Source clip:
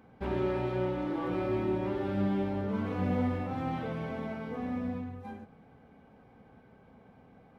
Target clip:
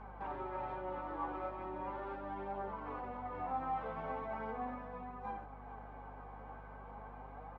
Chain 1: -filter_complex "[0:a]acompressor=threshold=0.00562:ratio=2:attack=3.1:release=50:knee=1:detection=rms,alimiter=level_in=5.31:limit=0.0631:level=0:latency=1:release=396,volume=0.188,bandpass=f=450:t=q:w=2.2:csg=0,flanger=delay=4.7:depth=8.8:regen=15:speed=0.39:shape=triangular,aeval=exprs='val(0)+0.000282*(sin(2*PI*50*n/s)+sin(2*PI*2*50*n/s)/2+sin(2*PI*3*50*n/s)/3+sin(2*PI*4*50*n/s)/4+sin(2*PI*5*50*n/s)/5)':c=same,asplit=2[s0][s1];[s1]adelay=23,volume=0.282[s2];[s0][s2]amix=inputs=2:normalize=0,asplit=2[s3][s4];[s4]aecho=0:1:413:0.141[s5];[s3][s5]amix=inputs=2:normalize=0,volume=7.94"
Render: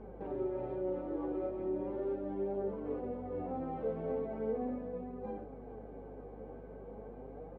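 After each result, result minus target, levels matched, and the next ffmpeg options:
compression: peak gain reduction +11.5 dB; 1 kHz band -11.0 dB
-filter_complex "[0:a]alimiter=level_in=5.31:limit=0.0631:level=0:latency=1:release=396,volume=0.188,bandpass=f=450:t=q:w=2.2:csg=0,flanger=delay=4.7:depth=8.8:regen=15:speed=0.39:shape=triangular,aeval=exprs='val(0)+0.000282*(sin(2*PI*50*n/s)+sin(2*PI*2*50*n/s)/2+sin(2*PI*3*50*n/s)/3+sin(2*PI*4*50*n/s)/4+sin(2*PI*5*50*n/s)/5)':c=same,asplit=2[s0][s1];[s1]adelay=23,volume=0.282[s2];[s0][s2]amix=inputs=2:normalize=0,asplit=2[s3][s4];[s4]aecho=0:1:413:0.141[s5];[s3][s5]amix=inputs=2:normalize=0,volume=7.94"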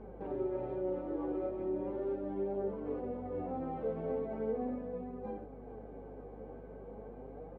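1 kHz band -11.5 dB
-filter_complex "[0:a]alimiter=level_in=5.31:limit=0.0631:level=0:latency=1:release=396,volume=0.188,bandpass=f=990:t=q:w=2.2:csg=0,flanger=delay=4.7:depth=8.8:regen=15:speed=0.39:shape=triangular,aeval=exprs='val(0)+0.000282*(sin(2*PI*50*n/s)+sin(2*PI*2*50*n/s)/2+sin(2*PI*3*50*n/s)/3+sin(2*PI*4*50*n/s)/4+sin(2*PI*5*50*n/s)/5)':c=same,asplit=2[s0][s1];[s1]adelay=23,volume=0.282[s2];[s0][s2]amix=inputs=2:normalize=0,asplit=2[s3][s4];[s4]aecho=0:1:413:0.141[s5];[s3][s5]amix=inputs=2:normalize=0,volume=7.94"

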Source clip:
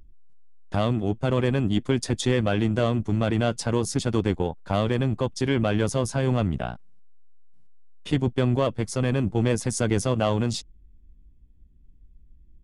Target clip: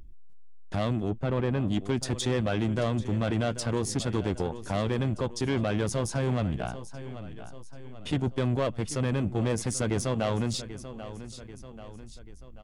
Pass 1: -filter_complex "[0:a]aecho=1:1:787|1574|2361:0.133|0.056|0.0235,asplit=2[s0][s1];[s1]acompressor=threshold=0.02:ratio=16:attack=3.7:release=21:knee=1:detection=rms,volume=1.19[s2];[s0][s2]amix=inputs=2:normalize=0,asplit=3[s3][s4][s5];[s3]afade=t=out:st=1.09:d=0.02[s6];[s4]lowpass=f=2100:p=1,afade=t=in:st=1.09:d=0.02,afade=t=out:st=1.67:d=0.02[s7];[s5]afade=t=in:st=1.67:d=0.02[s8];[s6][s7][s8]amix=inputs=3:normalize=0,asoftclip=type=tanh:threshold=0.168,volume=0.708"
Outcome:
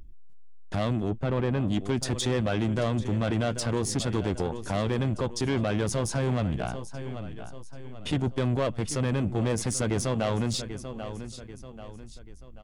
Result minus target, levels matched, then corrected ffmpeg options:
compression: peak gain reduction -10.5 dB
-filter_complex "[0:a]aecho=1:1:787|1574|2361:0.133|0.056|0.0235,asplit=2[s0][s1];[s1]acompressor=threshold=0.00562:ratio=16:attack=3.7:release=21:knee=1:detection=rms,volume=1.19[s2];[s0][s2]amix=inputs=2:normalize=0,asplit=3[s3][s4][s5];[s3]afade=t=out:st=1.09:d=0.02[s6];[s4]lowpass=f=2100:p=1,afade=t=in:st=1.09:d=0.02,afade=t=out:st=1.67:d=0.02[s7];[s5]afade=t=in:st=1.67:d=0.02[s8];[s6][s7][s8]amix=inputs=3:normalize=0,asoftclip=type=tanh:threshold=0.168,volume=0.708"

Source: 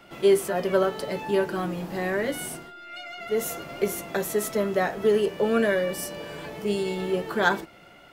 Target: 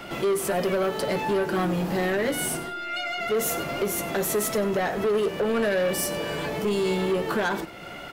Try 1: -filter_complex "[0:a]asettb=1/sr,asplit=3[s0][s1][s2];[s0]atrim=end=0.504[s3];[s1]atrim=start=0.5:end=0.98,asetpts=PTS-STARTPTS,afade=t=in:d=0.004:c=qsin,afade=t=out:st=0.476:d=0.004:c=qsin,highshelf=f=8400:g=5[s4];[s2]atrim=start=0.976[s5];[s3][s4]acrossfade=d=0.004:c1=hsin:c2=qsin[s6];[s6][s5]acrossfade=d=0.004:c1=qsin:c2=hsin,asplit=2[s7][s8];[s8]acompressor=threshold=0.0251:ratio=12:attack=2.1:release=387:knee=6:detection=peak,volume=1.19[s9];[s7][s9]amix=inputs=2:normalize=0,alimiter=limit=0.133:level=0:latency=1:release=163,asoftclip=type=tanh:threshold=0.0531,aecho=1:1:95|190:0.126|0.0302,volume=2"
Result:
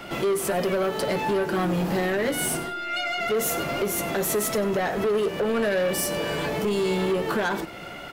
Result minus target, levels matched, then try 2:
compression: peak gain reduction -9 dB
-filter_complex "[0:a]asettb=1/sr,asplit=3[s0][s1][s2];[s0]atrim=end=0.504[s3];[s1]atrim=start=0.5:end=0.98,asetpts=PTS-STARTPTS,afade=t=in:d=0.004:c=qsin,afade=t=out:st=0.476:d=0.004:c=qsin,highshelf=f=8400:g=5[s4];[s2]atrim=start=0.976[s5];[s3][s4]acrossfade=d=0.004:c1=hsin:c2=qsin[s6];[s6][s5]acrossfade=d=0.004:c1=qsin:c2=hsin,asplit=2[s7][s8];[s8]acompressor=threshold=0.00794:ratio=12:attack=2.1:release=387:knee=6:detection=peak,volume=1.19[s9];[s7][s9]amix=inputs=2:normalize=0,alimiter=limit=0.133:level=0:latency=1:release=163,asoftclip=type=tanh:threshold=0.0531,aecho=1:1:95|190:0.126|0.0302,volume=2"

